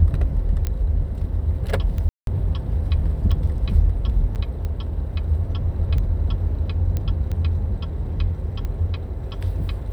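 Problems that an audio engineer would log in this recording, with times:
scratch tick 45 rpm −18 dBFS
0:00.67: click −12 dBFS
0:02.09–0:02.27: drop-out 182 ms
0:04.35–0:04.36: drop-out 8.3 ms
0:06.97: click −13 dBFS

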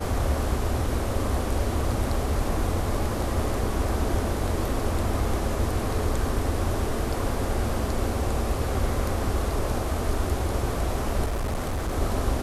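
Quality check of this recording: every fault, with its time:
0:11.25–0:11.94: clipping −24 dBFS

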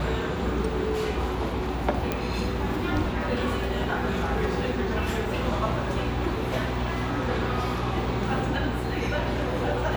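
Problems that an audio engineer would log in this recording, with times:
mains hum 60 Hz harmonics 6 −32 dBFS
0:02.12: click −12 dBFS

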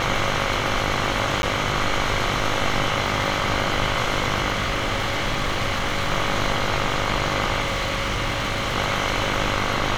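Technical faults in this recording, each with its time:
mains buzz 50 Hz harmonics 32 −28 dBFS
surface crackle 12 per second
0:01.42–0:01.43: drop-out
0:04.52–0:06.11: clipping −18.5 dBFS
0:07.60–0:08.75: clipping −19.5 dBFS

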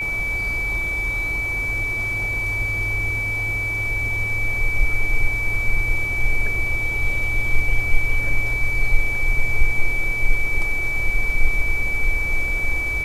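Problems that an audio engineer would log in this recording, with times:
whistle 2,300 Hz −22 dBFS

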